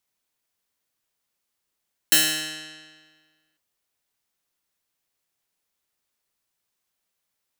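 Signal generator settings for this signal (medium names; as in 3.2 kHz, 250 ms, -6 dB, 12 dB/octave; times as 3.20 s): plucked string D#3, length 1.45 s, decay 1.60 s, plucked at 0.13, bright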